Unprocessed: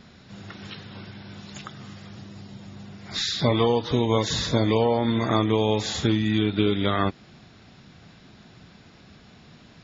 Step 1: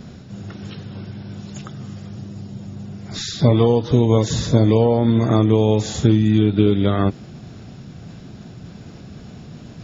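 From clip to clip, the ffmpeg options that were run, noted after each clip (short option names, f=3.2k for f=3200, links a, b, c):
-af "equalizer=f=125:t=o:w=1:g=4,equalizer=f=1k:t=o:w=1:g=-6,equalizer=f=2k:t=o:w=1:g=-8,equalizer=f=4k:t=o:w=1:g=-8,areverse,acompressor=mode=upward:threshold=-36dB:ratio=2.5,areverse,volume=6.5dB"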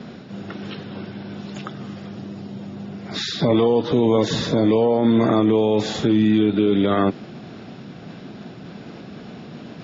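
-filter_complex "[0:a]acrossover=split=180 4800:gain=0.112 1 0.0631[a][b][c];[a][b][c]amix=inputs=3:normalize=0,alimiter=limit=-14.5dB:level=0:latency=1:release=27,volume=5.5dB"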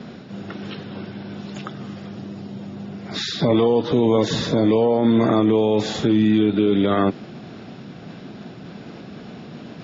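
-af anull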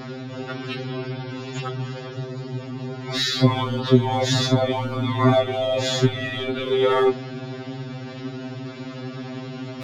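-filter_complex "[0:a]asplit=2[a][b];[b]asoftclip=type=hard:threshold=-26dB,volume=-7dB[c];[a][c]amix=inputs=2:normalize=0,afftfilt=real='re*2.45*eq(mod(b,6),0)':imag='im*2.45*eq(mod(b,6),0)':win_size=2048:overlap=0.75,volume=4dB"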